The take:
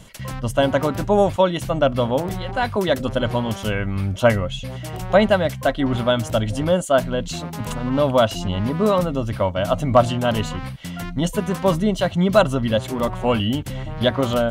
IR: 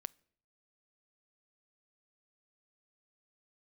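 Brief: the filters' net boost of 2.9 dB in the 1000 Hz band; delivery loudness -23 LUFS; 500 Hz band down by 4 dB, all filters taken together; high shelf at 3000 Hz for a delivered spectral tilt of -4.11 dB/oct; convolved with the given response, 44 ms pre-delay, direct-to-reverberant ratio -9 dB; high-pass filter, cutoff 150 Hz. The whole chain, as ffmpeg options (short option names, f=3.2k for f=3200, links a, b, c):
-filter_complex "[0:a]highpass=150,equalizer=f=500:t=o:g=-7.5,equalizer=f=1k:t=o:g=5.5,highshelf=f=3k:g=8,asplit=2[a][b];[1:a]atrim=start_sample=2205,adelay=44[c];[b][c]afir=irnorm=-1:irlink=0,volume=13dB[d];[a][d]amix=inputs=2:normalize=0,volume=-11dB"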